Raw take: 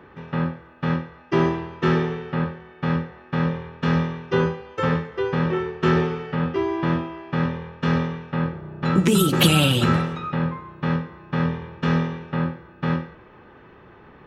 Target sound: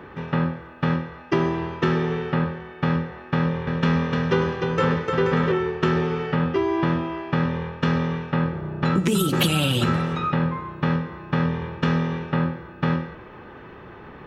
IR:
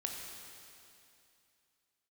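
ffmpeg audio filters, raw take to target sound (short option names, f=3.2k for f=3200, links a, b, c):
-filter_complex "[0:a]acompressor=threshold=-25dB:ratio=4,asettb=1/sr,asplit=3[a][b][c];[a]atrim=end=3.374[d];[b]atrim=start=3.37:end=5.52,asetpts=PTS-STARTPTS,afade=t=in:d=0.004:c=qsin,afade=t=out:st=2.146:d=0.004:c=qsin,aecho=1:1:300|480|588|652.8|691.7:0.631|0.398|0.251|0.158|0.1,atrim=end_sample=94815[e];[c]atrim=start=5.516[f];[d][e]acrossfade=d=0.004:c1=hsin:c2=qsin[g];[g][f]acrossfade=d=0.004:c1=qsin:c2=hsin,volume=6dB"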